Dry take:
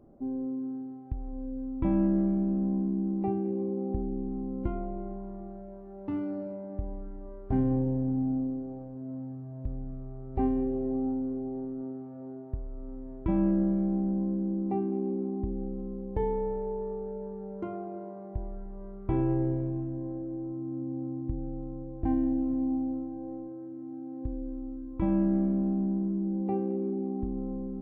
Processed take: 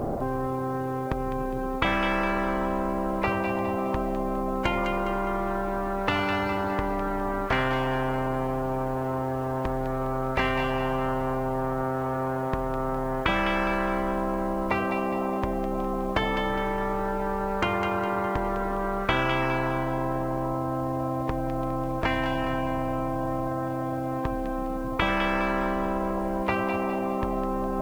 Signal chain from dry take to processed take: thin delay 0.205 s, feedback 42%, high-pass 2200 Hz, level -5.5 dB; spectral compressor 10:1; gain +8 dB

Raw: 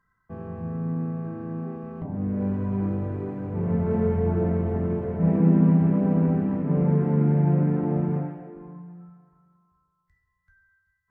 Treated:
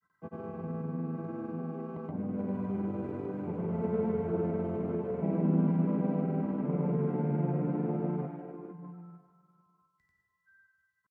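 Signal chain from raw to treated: HPF 190 Hz 12 dB/oct; notch 1800 Hz, Q 7.1; in parallel at +1.5 dB: compressor, threshold -34 dBFS, peak gain reduction 16 dB; on the sum: grains, pitch spread up and down by 0 st; gain -6.5 dB

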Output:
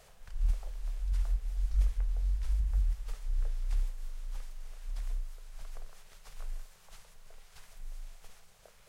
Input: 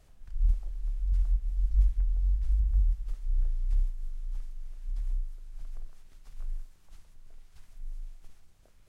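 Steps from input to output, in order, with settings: EQ curve 100 Hz 0 dB, 190 Hz +6 dB, 300 Hz -7 dB, 440 Hz +13 dB; gain -4 dB

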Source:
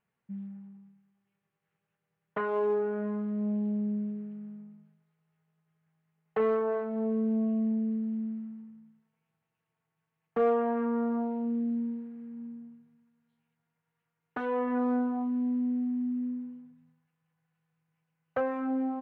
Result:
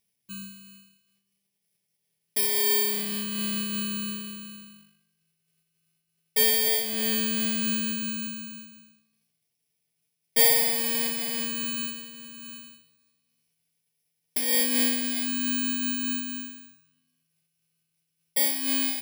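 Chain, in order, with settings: FFT order left unsorted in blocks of 32 samples; resonant high shelf 1800 Hz +11.5 dB, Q 1.5; on a send at -11 dB: reverb RT60 1.1 s, pre-delay 3 ms; on the sum: noise-modulated level, depth 55%

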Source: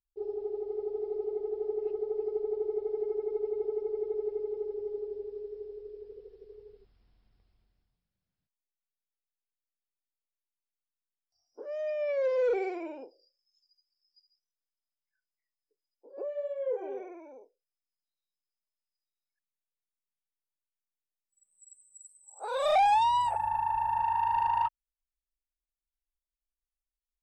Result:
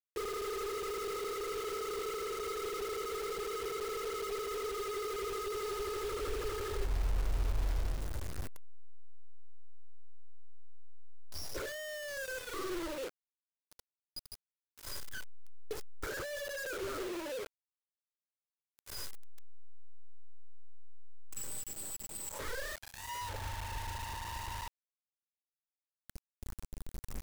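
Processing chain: recorder AGC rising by 11 dB/s; treble ducked by the level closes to 2900 Hz, closed at -27 dBFS; comb 2 ms, depth 42%; treble ducked by the level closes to 510 Hz, closed at -26.5 dBFS; high shelf 2800 Hz -5.5 dB; wavefolder -35.5 dBFS; compressor 4:1, threshold -52 dBFS, peak gain reduction 11.5 dB; low shelf 200 Hz +11.5 dB; fixed phaser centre 760 Hz, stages 6; echo 0.759 s -19.5 dB; bit-crush 9-bit; gain +11.5 dB

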